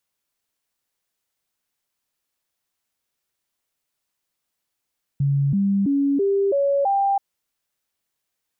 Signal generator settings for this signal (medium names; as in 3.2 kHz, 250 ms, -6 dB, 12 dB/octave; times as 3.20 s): stepped sine 140 Hz up, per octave 2, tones 6, 0.33 s, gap 0.00 s -16.5 dBFS